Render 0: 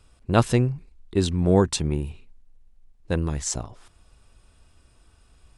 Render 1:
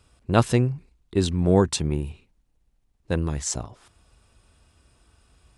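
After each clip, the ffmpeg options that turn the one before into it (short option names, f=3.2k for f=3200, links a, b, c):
-af "highpass=45"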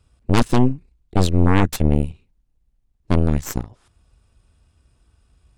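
-af "lowshelf=f=210:g=9,aeval=exprs='0.944*(cos(1*acos(clip(val(0)/0.944,-1,1)))-cos(1*PI/2))+0.422*(cos(8*acos(clip(val(0)/0.944,-1,1)))-cos(8*PI/2))':c=same,volume=-6dB"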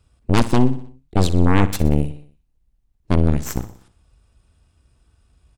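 -af "aecho=1:1:61|122|183|244|305:0.178|0.0925|0.0481|0.025|0.013"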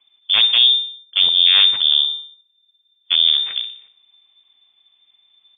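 -af "lowpass=f=3.1k:t=q:w=0.5098,lowpass=f=3.1k:t=q:w=0.6013,lowpass=f=3.1k:t=q:w=0.9,lowpass=f=3.1k:t=q:w=2.563,afreqshift=-3600"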